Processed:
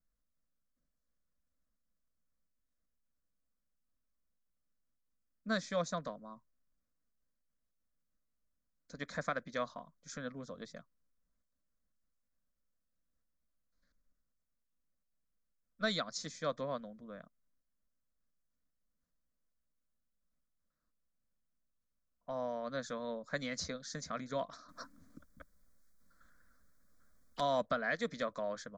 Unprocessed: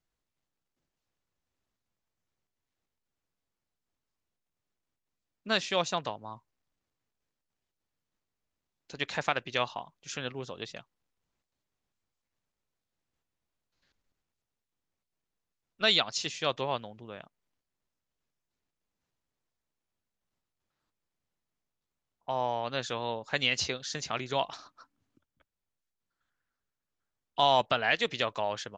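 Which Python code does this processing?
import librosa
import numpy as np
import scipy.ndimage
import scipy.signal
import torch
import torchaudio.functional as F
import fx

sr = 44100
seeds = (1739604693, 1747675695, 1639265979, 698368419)

y = fx.low_shelf(x, sr, hz=200.0, db=11.5)
y = fx.fixed_phaser(y, sr, hz=560.0, stages=8)
y = fx.spectral_comp(y, sr, ratio=4.0, at=(24.68, 27.39), fade=0.02)
y = y * librosa.db_to_amplitude(-5.0)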